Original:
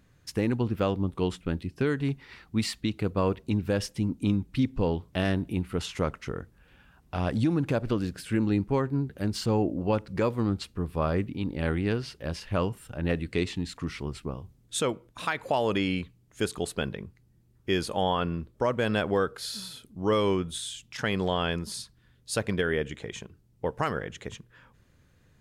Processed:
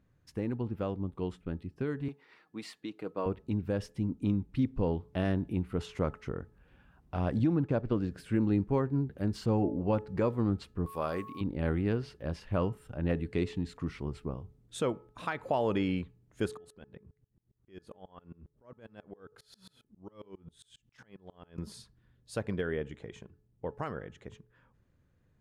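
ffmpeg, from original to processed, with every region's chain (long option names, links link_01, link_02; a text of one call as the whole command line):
ffmpeg -i in.wav -filter_complex "[0:a]asettb=1/sr,asplit=3[link_01][link_02][link_03];[link_01]atrim=end=2.084[link_04];[link_02]atrim=start=2.08:end=3.26,asetpts=PTS-STARTPTS,afade=type=in:duration=0.004:curve=qsin,afade=type=out:start_time=1.176:duration=0.004:curve=qsin,highpass=330,aecho=1:1:6.4:0.33,atrim=end_sample=52038[link_05];[link_03]atrim=start=3.256[link_06];[link_04][link_05]acrossfade=duration=0.004:curve1=hsin:curve2=qsin[link_07];[link_07][link_06]acrossfade=duration=0.004:curve1=qsin:curve2=hsin,asettb=1/sr,asplit=3[link_08][link_09][link_10];[link_08]atrim=end=7.394[link_11];[link_09]atrim=start=7.39:end=8.11,asetpts=PTS-STARTPTS,afade=type=in:duration=0.004:curve=qsin,afade=type=out:start_time=0.716:duration=0.004:curve=qsin,agate=range=-33dB:threshold=-30dB:ratio=3:release=100:detection=peak,equalizer=frequency=11000:width_type=o:width=1:gain=-10[link_12];[link_10]atrim=start=8.106[link_13];[link_11][link_12]acrossfade=duration=0.004:curve1=hsin:curve2=qsin[link_14];[link_14][link_13]acrossfade=duration=0.004:curve1=qsin:curve2=hsin,asettb=1/sr,asplit=3[link_15][link_16][link_17];[link_15]atrim=end=10.864[link_18];[link_16]atrim=start=10.86:end=11.41,asetpts=PTS-STARTPTS,afade=type=in:duration=0.004:curve=qsin,afade=type=out:start_time=0.546:duration=0.004:curve=qsin,aemphasis=mode=production:type=riaa,aeval=exprs='val(0)+0.01*sin(2*PI*1100*n/s)':channel_layout=same[link_19];[link_17]atrim=start=11.406[link_20];[link_18][link_19]acrossfade=duration=0.004:curve1=hsin:curve2=qsin[link_21];[link_21][link_20]acrossfade=duration=0.004:curve1=qsin:curve2=hsin,asettb=1/sr,asplit=3[link_22][link_23][link_24];[link_22]atrim=end=16.574[link_25];[link_23]atrim=start=16.57:end=21.58,asetpts=PTS-STARTPTS,afade=type=in:duration=0.004:curve=qsin,afade=type=out:start_time=5.006:duration=0.004:curve=qsin,bandreject=frequency=50:width_type=h:width=6,bandreject=frequency=100:width_type=h:width=6,bandreject=frequency=150:width_type=h:width=6,acompressor=threshold=-35dB:ratio=10:attack=3.2:release=140:knee=1:detection=peak,aeval=exprs='val(0)*pow(10,-30*if(lt(mod(-7.4*n/s,1),2*abs(-7.4)/1000),1-mod(-7.4*n/s,1)/(2*abs(-7.4)/1000),(mod(-7.4*n/s,1)-2*abs(-7.4)/1000)/(1-2*abs(-7.4)/1000))/20)':channel_layout=same[link_26];[link_24]atrim=start=21.576[link_27];[link_25][link_26]acrossfade=duration=0.004:curve1=hsin:curve2=qsin[link_28];[link_28][link_27]acrossfade=duration=0.004:curve1=qsin:curve2=hsin,dynaudnorm=framelen=610:gausssize=13:maxgain=5dB,highshelf=frequency=2000:gain=-11.5,bandreject=frequency=428.3:width_type=h:width=4,bandreject=frequency=856.6:width_type=h:width=4,bandreject=frequency=1284.9:width_type=h:width=4,bandreject=frequency=1713.2:width_type=h:width=4,volume=-7dB" out.wav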